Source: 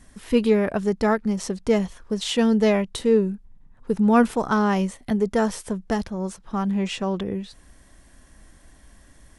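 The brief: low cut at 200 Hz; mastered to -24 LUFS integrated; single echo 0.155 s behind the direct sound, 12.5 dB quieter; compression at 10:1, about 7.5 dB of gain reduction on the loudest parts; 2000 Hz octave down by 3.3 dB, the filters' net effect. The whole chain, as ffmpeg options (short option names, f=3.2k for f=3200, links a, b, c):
-af "highpass=200,equalizer=f=2k:t=o:g=-4.5,acompressor=threshold=-21dB:ratio=10,aecho=1:1:155:0.237,volume=4dB"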